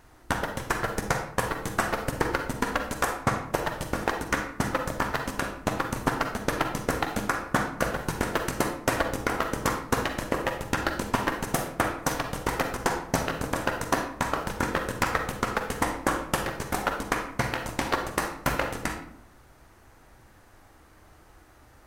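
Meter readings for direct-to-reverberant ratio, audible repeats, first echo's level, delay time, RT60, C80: 5.0 dB, none, none, none, 0.65 s, 10.5 dB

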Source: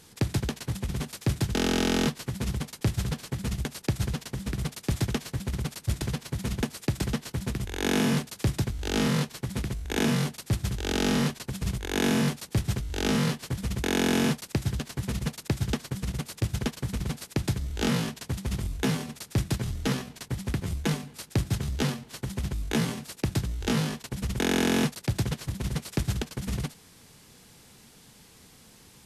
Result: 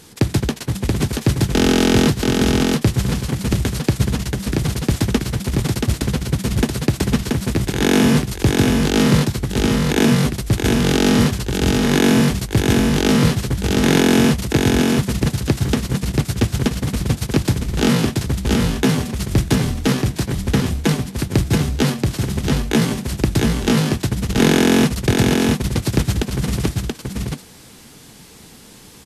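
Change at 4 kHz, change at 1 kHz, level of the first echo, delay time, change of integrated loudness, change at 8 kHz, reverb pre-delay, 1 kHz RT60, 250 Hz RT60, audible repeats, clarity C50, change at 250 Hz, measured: +10.5 dB, +10.5 dB, -3.0 dB, 0.68 s, +11.5 dB, +10.5 dB, none, none, none, 1, none, +12.5 dB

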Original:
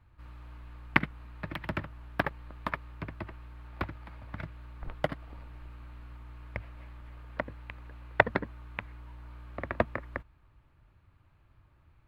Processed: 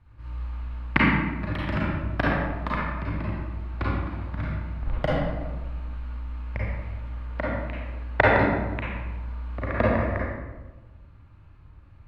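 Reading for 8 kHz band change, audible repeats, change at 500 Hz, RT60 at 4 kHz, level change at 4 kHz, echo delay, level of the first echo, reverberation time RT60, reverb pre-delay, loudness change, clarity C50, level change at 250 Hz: n/a, none, +9.0 dB, 0.70 s, +6.5 dB, none, none, 1.2 s, 33 ms, +7.5 dB, -3.0 dB, +12.0 dB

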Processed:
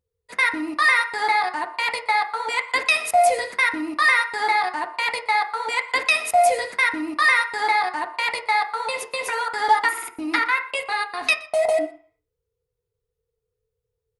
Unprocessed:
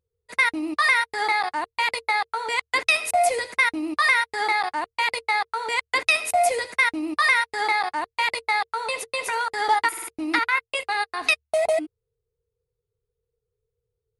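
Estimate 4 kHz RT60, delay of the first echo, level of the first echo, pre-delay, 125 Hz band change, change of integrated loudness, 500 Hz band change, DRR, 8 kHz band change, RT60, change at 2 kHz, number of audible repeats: 0.45 s, 0.121 s, -21.0 dB, 3 ms, n/a, +1.5 dB, +2.5 dB, 4.0 dB, 0.0 dB, 0.45 s, +1.5 dB, 1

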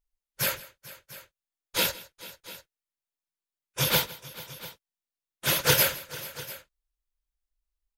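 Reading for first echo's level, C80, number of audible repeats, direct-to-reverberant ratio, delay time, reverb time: -19.5 dB, none, 3, none, 0.161 s, none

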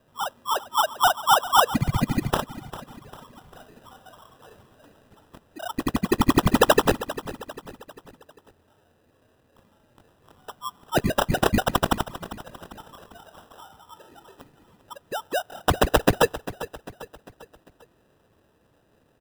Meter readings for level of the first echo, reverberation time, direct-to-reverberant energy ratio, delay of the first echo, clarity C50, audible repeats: -15.0 dB, none, none, 0.398 s, none, 4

